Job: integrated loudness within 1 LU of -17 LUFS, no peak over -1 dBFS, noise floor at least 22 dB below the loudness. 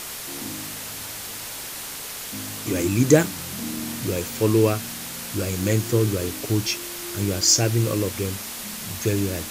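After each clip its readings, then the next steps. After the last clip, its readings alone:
dropouts 3; longest dropout 1.9 ms; noise floor -34 dBFS; noise floor target -46 dBFS; loudness -24.0 LUFS; peak -1.5 dBFS; loudness target -17.0 LUFS
-> interpolate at 3.79/5.76/7.41, 1.9 ms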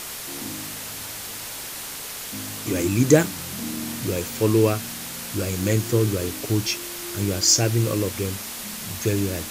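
dropouts 0; noise floor -34 dBFS; noise floor target -46 dBFS
-> noise print and reduce 12 dB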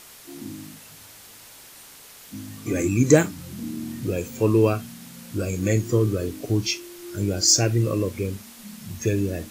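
noise floor -46 dBFS; loudness -23.0 LUFS; peak -2.0 dBFS; loudness target -17.0 LUFS
-> gain +6 dB; limiter -1 dBFS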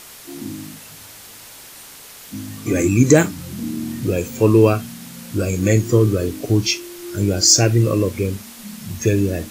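loudness -17.5 LUFS; peak -1.0 dBFS; noise floor -40 dBFS

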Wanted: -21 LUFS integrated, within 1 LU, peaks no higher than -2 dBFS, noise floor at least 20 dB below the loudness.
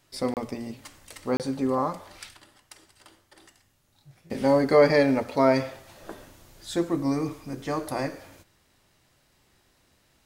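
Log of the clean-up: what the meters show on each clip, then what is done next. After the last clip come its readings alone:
dropouts 2; longest dropout 28 ms; loudness -25.5 LUFS; peak -8.5 dBFS; loudness target -21.0 LUFS
-> interpolate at 0.34/1.37, 28 ms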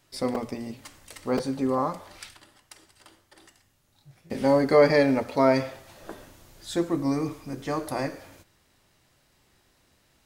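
dropouts 0; loudness -25.0 LUFS; peak -8.5 dBFS; loudness target -21.0 LUFS
-> gain +4 dB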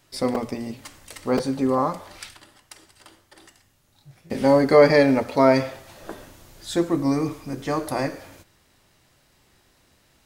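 loudness -21.0 LUFS; peak -4.5 dBFS; noise floor -62 dBFS

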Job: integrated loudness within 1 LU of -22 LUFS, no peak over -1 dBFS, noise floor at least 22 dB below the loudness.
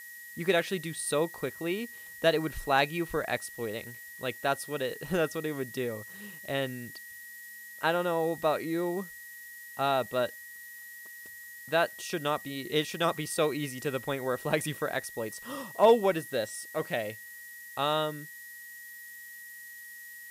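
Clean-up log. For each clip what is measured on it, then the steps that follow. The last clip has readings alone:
steady tone 1900 Hz; tone level -45 dBFS; noise floor -47 dBFS; noise floor target -53 dBFS; loudness -30.5 LUFS; peak -11.0 dBFS; loudness target -22.0 LUFS
-> notch 1900 Hz, Q 30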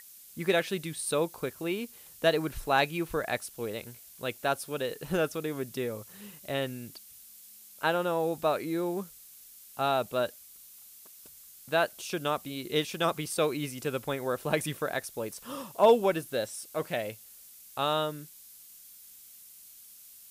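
steady tone none; noise floor -52 dBFS; noise floor target -53 dBFS
-> denoiser 6 dB, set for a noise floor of -52 dBFS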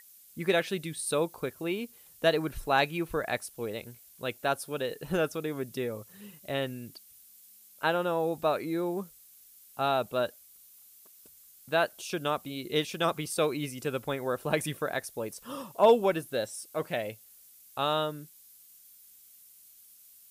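noise floor -56 dBFS; loudness -31.0 LUFS; peak -11.0 dBFS; loudness target -22.0 LUFS
-> gain +9 dB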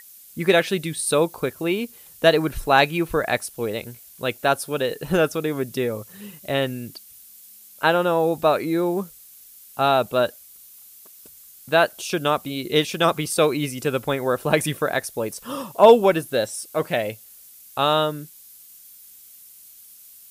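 loudness -22.0 LUFS; peak -2.0 dBFS; noise floor -47 dBFS

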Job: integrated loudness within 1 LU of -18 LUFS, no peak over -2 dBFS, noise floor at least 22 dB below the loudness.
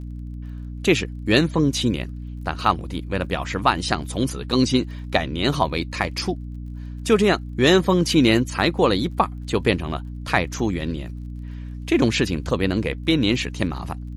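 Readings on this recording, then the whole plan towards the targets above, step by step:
ticks 30/s; hum 60 Hz; harmonics up to 300 Hz; hum level -30 dBFS; loudness -22.0 LUFS; peak -2.5 dBFS; loudness target -18.0 LUFS
-> de-click; de-hum 60 Hz, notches 5; gain +4 dB; limiter -2 dBFS

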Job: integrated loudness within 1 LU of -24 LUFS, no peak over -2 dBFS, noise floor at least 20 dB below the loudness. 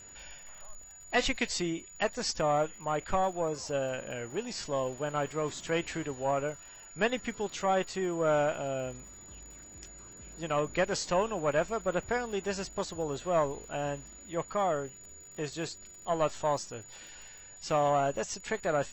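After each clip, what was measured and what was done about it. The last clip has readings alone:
ticks 57/s; steady tone 6900 Hz; tone level -49 dBFS; loudness -32.0 LUFS; peak -14.5 dBFS; loudness target -24.0 LUFS
-> de-click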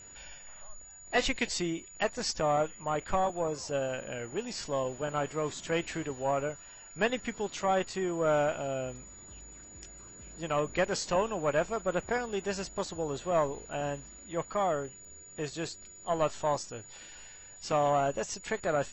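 ticks 0.32/s; steady tone 6900 Hz; tone level -49 dBFS
-> notch 6900 Hz, Q 30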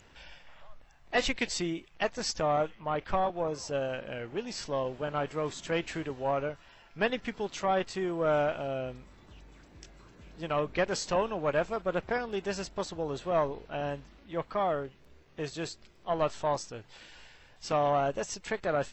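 steady tone none; loudness -32.0 LUFS; peak -14.5 dBFS; loudness target -24.0 LUFS
-> gain +8 dB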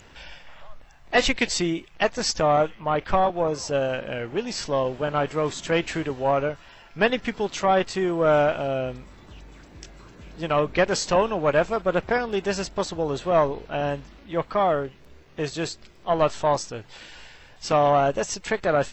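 loudness -24.0 LUFS; peak -6.5 dBFS; noise floor -50 dBFS

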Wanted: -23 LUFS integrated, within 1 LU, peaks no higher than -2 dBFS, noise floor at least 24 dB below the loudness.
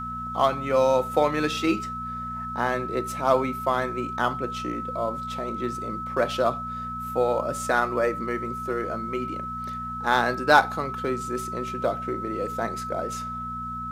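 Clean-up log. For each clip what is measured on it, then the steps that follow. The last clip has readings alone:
hum 60 Hz; harmonics up to 240 Hz; hum level -37 dBFS; steady tone 1300 Hz; tone level -31 dBFS; loudness -26.0 LUFS; peak -4.0 dBFS; loudness target -23.0 LUFS
-> de-hum 60 Hz, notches 4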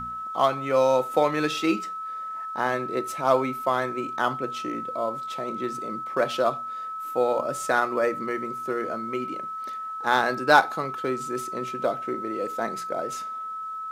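hum none; steady tone 1300 Hz; tone level -31 dBFS
-> notch 1300 Hz, Q 30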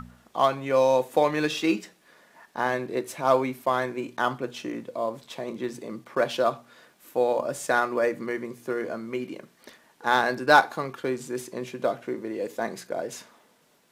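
steady tone none; loudness -26.5 LUFS; peak -4.5 dBFS; loudness target -23.0 LUFS
-> gain +3.5 dB; limiter -2 dBFS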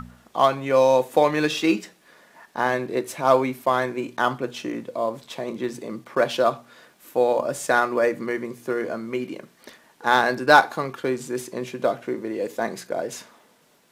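loudness -23.5 LUFS; peak -2.0 dBFS; noise floor -59 dBFS

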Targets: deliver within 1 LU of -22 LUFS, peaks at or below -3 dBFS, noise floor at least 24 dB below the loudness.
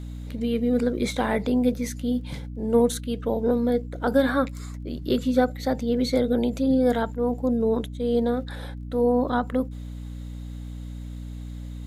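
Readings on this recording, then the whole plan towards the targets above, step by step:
ticks 24/s; hum 60 Hz; harmonics up to 300 Hz; hum level -33 dBFS; loudness -24.5 LUFS; peak -8.0 dBFS; loudness target -22.0 LUFS
-> de-click; de-hum 60 Hz, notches 5; gain +2.5 dB

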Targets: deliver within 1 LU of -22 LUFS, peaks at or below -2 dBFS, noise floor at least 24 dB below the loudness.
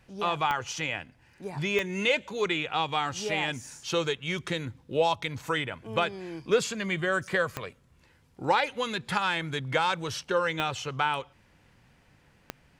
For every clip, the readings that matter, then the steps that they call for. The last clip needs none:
clicks 5; loudness -29.0 LUFS; peak -10.0 dBFS; loudness target -22.0 LUFS
-> de-click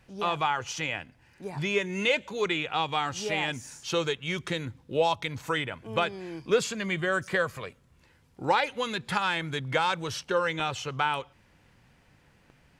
clicks 0; loudness -29.0 LUFS; peak -10.0 dBFS; loudness target -22.0 LUFS
-> gain +7 dB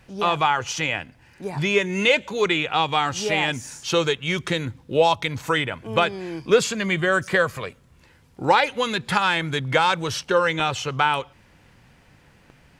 loudness -22.0 LUFS; peak -3.0 dBFS; noise floor -55 dBFS

